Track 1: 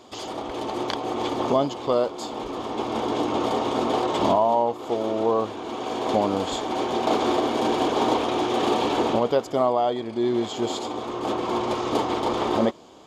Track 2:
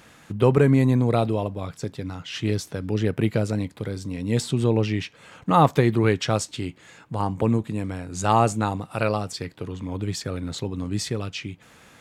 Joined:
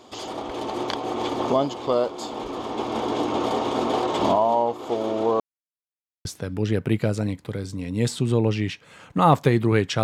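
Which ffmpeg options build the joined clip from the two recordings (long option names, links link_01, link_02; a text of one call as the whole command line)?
ffmpeg -i cue0.wav -i cue1.wav -filter_complex "[0:a]apad=whole_dur=10.03,atrim=end=10.03,asplit=2[link_01][link_02];[link_01]atrim=end=5.4,asetpts=PTS-STARTPTS,afade=type=out:start_time=5.396:duration=0.004:curve=hsin[link_03];[link_02]atrim=start=5.4:end=6.25,asetpts=PTS-STARTPTS,volume=0[link_04];[1:a]atrim=start=2.57:end=6.35,asetpts=PTS-STARTPTS,afade=type=in:duration=0.004:curve=hsin[link_05];[link_03][link_04][link_05]concat=n=3:v=0:a=1" out.wav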